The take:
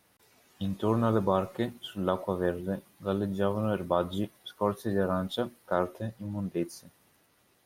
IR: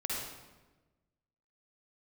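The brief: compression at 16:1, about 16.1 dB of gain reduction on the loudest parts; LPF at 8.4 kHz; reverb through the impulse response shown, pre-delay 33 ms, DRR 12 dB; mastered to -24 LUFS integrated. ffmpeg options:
-filter_complex "[0:a]lowpass=8400,acompressor=threshold=0.0141:ratio=16,asplit=2[s0][s1];[1:a]atrim=start_sample=2205,adelay=33[s2];[s1][s2]afir=irnorm=-1:irlink=0,volume=0.158[s3];[s0][s3]amix=inputs=2:normalize=0,volume=9.44"

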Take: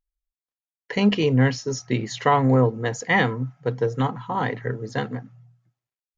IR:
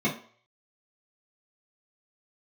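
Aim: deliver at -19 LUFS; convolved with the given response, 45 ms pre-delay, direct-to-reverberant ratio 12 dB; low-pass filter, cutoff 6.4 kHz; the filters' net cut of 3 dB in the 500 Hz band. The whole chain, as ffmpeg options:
-filter_complex "[0:a]lowpass=6400,equalizer=f=500:t=o:g=-3.5,asplit=2[s0][s1];[1:a]atrim=start_sample=2205,adelay=45[s2];[s1][s2]afir=irnorm=-1:irlink=0,volume=0.0668[s3];[s0][s3]amix=inputs=2:normalize=0,volume=1.58"

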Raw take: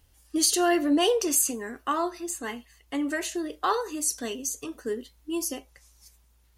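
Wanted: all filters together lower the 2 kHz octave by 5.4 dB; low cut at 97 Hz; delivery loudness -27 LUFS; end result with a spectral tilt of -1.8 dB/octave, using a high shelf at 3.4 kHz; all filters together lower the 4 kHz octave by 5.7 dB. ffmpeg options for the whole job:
-af "highpass=97,equalizer=f=2000:t=o:g=-6,highshelf=f=3400:g=3.5,equalizer=f=4000:t=o:g=-8.5"

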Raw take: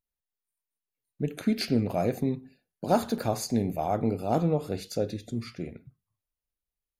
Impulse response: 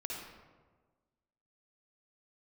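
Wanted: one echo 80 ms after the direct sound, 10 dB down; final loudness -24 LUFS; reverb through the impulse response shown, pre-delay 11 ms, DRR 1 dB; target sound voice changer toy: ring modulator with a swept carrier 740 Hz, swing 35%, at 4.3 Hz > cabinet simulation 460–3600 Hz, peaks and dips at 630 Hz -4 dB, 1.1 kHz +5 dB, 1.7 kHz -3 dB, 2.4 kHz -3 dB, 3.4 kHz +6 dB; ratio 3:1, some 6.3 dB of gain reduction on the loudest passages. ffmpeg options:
-filter_complex "[0:a]acompressor=threshold=0.0398:ratio=3,aecho=1:1:80:0.316,asplit=2[s0][s1];[1:a]atrim=start_sample=2205,adelay=11[s2];[s1][s2]afir=irnorm=-1:irlink=0,volume=0.841[s3];[s0][s3]amix=inputs=2:normalize=0,aeval=exprs='val(0)*sin(2*PI*740*n/s+740*0.35/4.3*sin(2*PI*4.3*n/s))':c=same,highpass=460,equalizer=f=630:t=q:w=4:g=-4,equalizer=f=1100:t=q:w=4:g=5,equalizer=f=1700:t=q:w=4:g=-3,equalizer=f=2400:t=q:w=4:g=-3,equalizer=f=3400:t=q:w=4:g=6,lowpass=f=3600:w=0.5412,lowpass=f=3600:w=1.3066,volume=3.16"

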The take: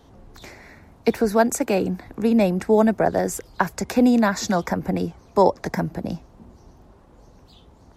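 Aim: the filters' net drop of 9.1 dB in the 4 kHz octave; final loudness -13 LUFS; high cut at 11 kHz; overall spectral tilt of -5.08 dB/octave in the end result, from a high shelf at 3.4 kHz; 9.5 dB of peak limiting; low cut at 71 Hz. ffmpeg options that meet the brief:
-af "highpass=71,lowpass=11000,highshelf=f=3400:g=-5.5,equalizer=f=4000:t=o:g=-7.5,volume=3.76,alimiter=limit=0.841:level=0:latency=1"

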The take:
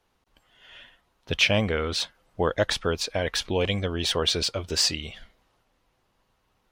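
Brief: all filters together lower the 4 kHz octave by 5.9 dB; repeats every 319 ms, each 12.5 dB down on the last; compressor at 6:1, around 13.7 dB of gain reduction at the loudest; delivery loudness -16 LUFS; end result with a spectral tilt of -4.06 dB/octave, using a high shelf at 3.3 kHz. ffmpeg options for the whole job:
-af "highshelf=f=3300:g=-5.5,equalizer=f=4000:t=o:g=-3.5,acompressor=threshold=0.02:ratio=6,aecho=1:1:319|638|957:0.237|0.0569|0.0137,volume=12.6"

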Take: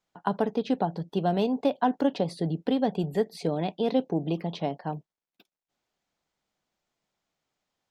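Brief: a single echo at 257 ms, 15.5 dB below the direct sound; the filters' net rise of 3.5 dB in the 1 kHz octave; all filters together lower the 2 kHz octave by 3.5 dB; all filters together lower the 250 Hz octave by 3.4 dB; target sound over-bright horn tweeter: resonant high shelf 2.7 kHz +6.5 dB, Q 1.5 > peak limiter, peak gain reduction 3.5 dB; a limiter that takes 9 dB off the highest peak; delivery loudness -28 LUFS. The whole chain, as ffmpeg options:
-af "equalizer=f=250:t=o:g=-4.5,equalizer=f=1000:t=o:g=7.5,equalizer=f=2000:t=o:g=-7.5,alimiter=limit=0.133:level=0:latency=1,highshelf=f=2700:t=q:w=1.5:g=6.5,aecho=1:1:257:0.168,volume=1.68,alimiter=limit=0.168:level=0:latency=1"

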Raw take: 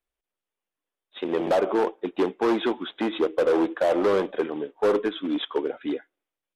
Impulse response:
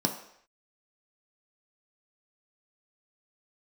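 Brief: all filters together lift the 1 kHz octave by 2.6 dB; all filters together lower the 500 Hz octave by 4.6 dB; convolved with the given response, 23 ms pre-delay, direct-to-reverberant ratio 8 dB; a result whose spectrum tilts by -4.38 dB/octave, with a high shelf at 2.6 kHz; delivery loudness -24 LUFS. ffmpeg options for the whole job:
-filter_complex "[0:a]equalizer=f=500:t=o:g=-7,equalizer=f=1000:t=o:g=7,highshelf=f=2600:g=-8.5,asplit=2[s0][s1];[1:a]atrim=start_sample=2205,adelay=23[s2];[s1][s2]afir=irnorm=-1:irlink=0,volume=0.158[s3];[s0][s3]amix=inputs=2:normalize=0,volume=1.26"

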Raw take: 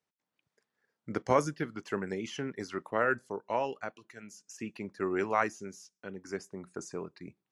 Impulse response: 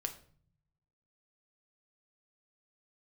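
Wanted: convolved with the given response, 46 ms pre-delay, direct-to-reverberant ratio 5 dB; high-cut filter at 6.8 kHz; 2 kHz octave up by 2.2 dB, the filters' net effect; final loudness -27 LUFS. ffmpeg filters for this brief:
-filter_complex "[0:a]lowpass=6800,equalizer=f=2000:t=o:g=3,asplit=2[s0][s1];[1:a]atrim=start_sample=2205,adelay=46[s2];[s1][s2]afir=irnorm=-1:irlink=0,volume=0.562[s3];[s0][s3]amix=inputs=2:normalize=0,volume=1.88"

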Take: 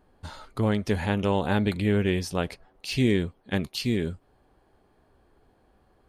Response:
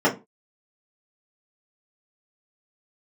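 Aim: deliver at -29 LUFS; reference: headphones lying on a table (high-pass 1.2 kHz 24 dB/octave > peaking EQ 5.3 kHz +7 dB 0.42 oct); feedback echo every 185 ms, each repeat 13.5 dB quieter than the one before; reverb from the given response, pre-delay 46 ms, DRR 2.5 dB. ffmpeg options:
-filter_complex "[0:a]aecho=1:1:185|370:0.211|0.0444,asplit=2[s0][s1];[1:a]atrim=start_sample=2205,adelay=46[s2];[s1][s2]afir=irnorm=-1:irlink=0,volume=0.0891[s3];[s0][s3]amix=inputs=2:normalize=0,highpass=f=1200:w=0.5412,highpass=f=1200:w=1.3066,equalizer=f=5300:t=o:w=0.42:g=7,volume=1.68"

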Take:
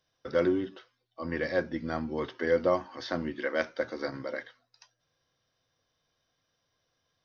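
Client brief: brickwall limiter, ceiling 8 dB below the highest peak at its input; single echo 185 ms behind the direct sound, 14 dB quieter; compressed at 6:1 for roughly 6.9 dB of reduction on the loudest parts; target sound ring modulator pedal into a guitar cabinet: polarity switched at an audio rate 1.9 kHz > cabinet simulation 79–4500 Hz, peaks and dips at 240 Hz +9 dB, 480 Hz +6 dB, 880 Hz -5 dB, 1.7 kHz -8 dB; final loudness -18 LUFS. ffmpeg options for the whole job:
-af "acompressor=threshold=0.0398:ratio=6,alimiter=level_in=1.12:limit=0.0631:level=0:latency=1,volume=0.891,aecho=1:1:185:0.2,aeval=exprs='val(0)*sgn(sin(2*PI*1900*n/s))':c=same,highpass=79,equalizer=f=240:t=q:w=4:g=9,equalizer=f=480:t=q:w=4:g=6,equalizer=f=880:t=q:w=4:g=-5,equalizer=f=1700:t=q:w=4:g=-8,lowpass=f=4500:w=0.5412,lowpass=f=4500:w=1.3066,volume=9.44"

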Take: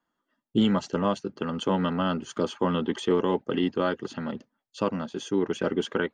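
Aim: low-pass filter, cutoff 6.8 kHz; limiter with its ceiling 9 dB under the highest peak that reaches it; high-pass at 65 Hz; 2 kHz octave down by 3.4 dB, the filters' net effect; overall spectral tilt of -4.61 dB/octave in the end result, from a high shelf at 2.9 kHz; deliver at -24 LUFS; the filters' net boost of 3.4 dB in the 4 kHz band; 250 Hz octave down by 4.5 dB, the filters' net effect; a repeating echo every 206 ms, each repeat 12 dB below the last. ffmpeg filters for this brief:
-af "highpass=65,lowpass=6800,equalizer=f=250:t=o:g=-6,equalizer=f=2000:t=o:g=-8.5,highshelf=f=2900:g=6.5,equalizer=f=4000:t=o:g=4,alimiter=limit=0.0794:level=0:latency=1,aecho=1:1:206|412|618:0.251|0.0628|0.0157,volume=2.99"

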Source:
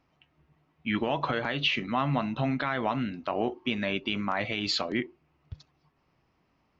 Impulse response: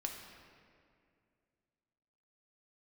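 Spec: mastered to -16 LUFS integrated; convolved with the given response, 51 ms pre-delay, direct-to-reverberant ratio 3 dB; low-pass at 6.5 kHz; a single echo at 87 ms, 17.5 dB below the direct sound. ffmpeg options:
-filter_complex "[0:a]lowpass=6500,aecho=1:1:87:0.133,asplit=2[s0][s1];[1:a]atrim=start_sample=2205,adelay=51[s2];[s1][s2]afir=irnorm=-1:irlink=0,volume=0.708[s3];[s0][s3]amix=inputs=2:normalize=0,volume=3.98"

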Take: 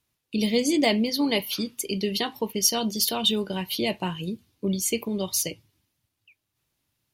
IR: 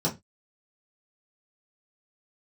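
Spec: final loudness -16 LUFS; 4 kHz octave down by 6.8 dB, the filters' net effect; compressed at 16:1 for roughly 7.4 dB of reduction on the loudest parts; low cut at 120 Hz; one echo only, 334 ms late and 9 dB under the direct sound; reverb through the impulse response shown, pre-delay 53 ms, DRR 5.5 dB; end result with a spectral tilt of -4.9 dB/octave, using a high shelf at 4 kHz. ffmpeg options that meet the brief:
-filter_complex "[0:a]highpass=120,highshelf=f=4000:g=-5,equalizer=f=4000:t=o:g=-6,acompressor=threshold=0.0501:ratio=16,aecho=1:1:334:0.355,asplit=2[s0][s1];[1:a]atrim=start_sample=2205,adelay=53[s2];[s1][s2]afir=irnorm=-1:irlink=0,volume=0.178[s3];[s0][s3]amix=inputs=2:normalize=0,volume=4.22"

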